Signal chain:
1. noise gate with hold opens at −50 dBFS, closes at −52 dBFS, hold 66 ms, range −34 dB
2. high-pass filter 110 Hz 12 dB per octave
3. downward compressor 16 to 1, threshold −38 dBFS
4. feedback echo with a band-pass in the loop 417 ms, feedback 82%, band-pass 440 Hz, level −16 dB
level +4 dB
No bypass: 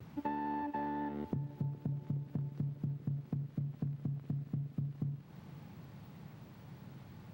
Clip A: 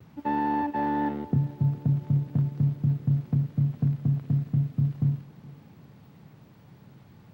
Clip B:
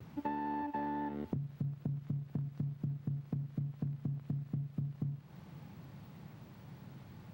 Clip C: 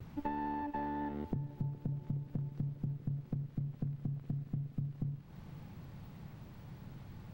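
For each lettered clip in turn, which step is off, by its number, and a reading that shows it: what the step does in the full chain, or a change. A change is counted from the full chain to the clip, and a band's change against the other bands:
3, average gain reduction 7.5 dB
4, echo-to-direct ratio −18.5 dB to none audible
2, change in momentary loudness spread −2 LU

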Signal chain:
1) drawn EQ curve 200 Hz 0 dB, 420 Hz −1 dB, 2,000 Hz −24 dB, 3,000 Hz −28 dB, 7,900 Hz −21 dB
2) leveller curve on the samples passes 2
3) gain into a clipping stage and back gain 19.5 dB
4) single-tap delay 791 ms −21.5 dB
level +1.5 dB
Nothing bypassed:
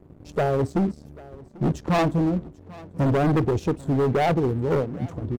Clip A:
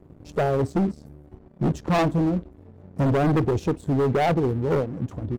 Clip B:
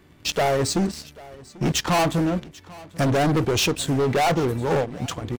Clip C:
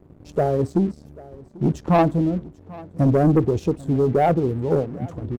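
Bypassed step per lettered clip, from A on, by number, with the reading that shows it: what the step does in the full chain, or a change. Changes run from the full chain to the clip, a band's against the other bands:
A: 4, change in momentary loudness spread −8 LU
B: 1, 8 kHz band +16.5 dB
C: 3, distortion level −11 dB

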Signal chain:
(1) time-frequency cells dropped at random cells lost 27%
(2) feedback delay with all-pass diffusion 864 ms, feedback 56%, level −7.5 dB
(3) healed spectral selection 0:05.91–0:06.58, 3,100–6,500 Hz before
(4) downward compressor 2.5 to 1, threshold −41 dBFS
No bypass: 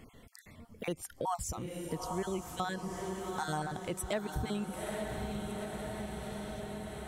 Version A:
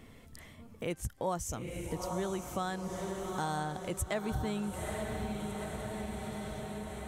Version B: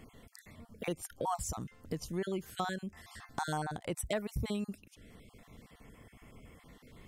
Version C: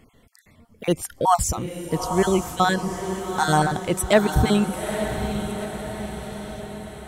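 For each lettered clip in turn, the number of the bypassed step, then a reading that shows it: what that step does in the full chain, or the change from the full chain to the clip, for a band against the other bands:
1, change in crest factor −1.5 dB
2, change in momentary loudness spread +15 LU
4, average gain reduction 11.5 dB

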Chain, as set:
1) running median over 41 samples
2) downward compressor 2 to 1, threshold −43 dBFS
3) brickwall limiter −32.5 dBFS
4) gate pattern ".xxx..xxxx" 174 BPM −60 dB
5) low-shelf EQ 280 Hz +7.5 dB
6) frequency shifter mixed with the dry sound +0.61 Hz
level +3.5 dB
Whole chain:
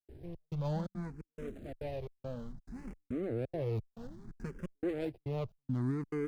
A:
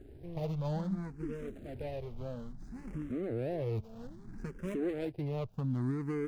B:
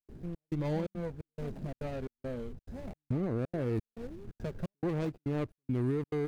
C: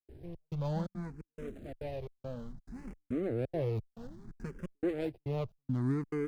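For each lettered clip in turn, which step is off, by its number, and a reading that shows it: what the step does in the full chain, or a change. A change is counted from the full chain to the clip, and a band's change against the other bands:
4, change in crest factor −1.5 dB
6, change in integrated loudness +3.0 LU
3, change in momentary loudness spread +2 LU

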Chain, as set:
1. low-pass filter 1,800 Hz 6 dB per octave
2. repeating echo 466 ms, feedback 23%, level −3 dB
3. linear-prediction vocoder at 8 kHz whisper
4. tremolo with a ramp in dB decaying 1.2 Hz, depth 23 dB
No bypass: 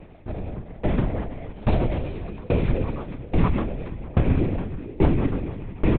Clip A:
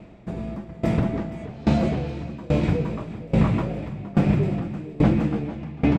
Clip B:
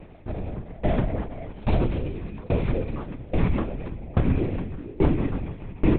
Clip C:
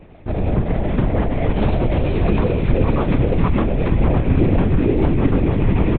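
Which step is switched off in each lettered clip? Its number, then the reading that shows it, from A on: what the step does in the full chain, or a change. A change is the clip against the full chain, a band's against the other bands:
3, 250 Hz band +2.5 dB
2, change in integrated loudness −1.5 LU
4, change in momentary loudness spread −8 LU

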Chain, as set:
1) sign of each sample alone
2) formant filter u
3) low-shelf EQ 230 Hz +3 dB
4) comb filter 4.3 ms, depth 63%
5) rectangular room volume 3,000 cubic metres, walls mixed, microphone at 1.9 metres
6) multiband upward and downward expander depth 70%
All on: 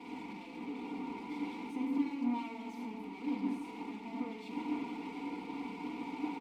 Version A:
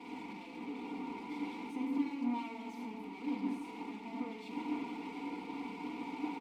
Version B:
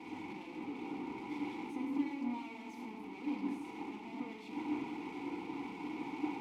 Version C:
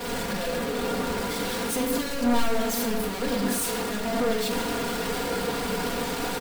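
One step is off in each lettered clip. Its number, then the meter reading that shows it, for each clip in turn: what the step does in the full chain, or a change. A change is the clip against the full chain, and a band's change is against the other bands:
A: 3, change in integrated loudness −1.0 LU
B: 4, 2 kHz band +1.5 dB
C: 2, 250 Hz band −11.5 dB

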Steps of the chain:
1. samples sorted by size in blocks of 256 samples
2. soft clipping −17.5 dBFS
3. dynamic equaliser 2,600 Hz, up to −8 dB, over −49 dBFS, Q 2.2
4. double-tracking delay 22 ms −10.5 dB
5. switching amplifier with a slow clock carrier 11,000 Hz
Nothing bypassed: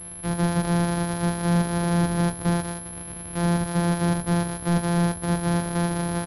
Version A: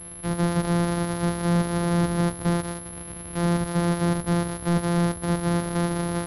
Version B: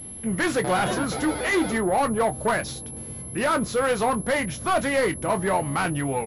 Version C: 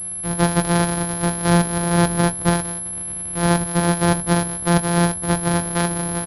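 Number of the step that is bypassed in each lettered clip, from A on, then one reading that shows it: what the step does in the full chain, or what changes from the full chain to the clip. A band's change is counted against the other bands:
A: 4, 500 Hz band +2.0 dB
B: 1, 125 Hz band −13.0 dB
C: 2, distortion level −9 dB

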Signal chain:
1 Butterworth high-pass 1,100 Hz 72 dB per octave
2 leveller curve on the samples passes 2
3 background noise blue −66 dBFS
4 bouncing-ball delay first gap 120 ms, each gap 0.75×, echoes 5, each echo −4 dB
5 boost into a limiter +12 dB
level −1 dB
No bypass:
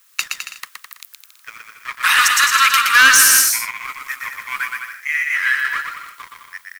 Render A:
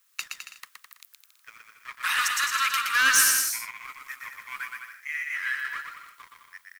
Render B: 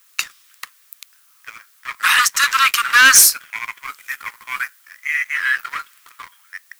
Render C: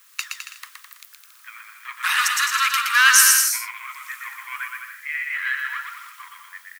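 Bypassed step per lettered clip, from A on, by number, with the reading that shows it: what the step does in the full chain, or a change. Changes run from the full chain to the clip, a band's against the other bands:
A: 5, change in crest factor +4.0 dB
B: 4, change in momentary loudness spread +2 LU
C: 2, change in crest factor +5.0 dB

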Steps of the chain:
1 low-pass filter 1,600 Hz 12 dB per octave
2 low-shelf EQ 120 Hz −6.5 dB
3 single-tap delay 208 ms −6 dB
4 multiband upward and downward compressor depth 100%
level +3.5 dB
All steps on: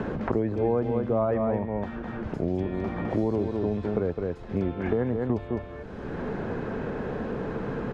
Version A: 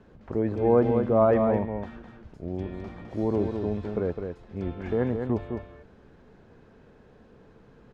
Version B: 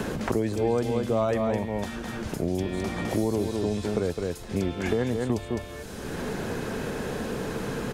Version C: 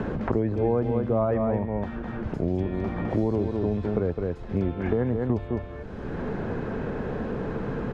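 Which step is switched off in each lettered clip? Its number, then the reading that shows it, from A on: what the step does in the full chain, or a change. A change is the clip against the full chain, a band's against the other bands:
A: 4, change in crest factor +3.5 dB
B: 1, 2 kHz band +4.0 dB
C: 2, 125 Hz band +3.0 dB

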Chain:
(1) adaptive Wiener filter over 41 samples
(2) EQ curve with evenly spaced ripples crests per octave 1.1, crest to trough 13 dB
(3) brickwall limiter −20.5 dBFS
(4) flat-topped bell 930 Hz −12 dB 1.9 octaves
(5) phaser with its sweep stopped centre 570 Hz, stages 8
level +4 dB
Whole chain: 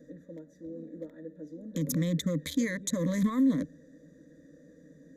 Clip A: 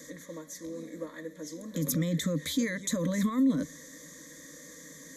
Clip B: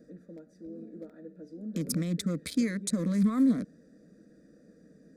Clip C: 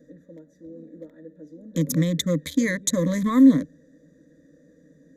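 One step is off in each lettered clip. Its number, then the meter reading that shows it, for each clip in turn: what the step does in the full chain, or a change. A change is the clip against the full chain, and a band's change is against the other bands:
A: 1, 8 kHz band +2.5 dB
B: 2, 2 kHz band −3.0 dB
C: 3, average gain reduction 3.0 dB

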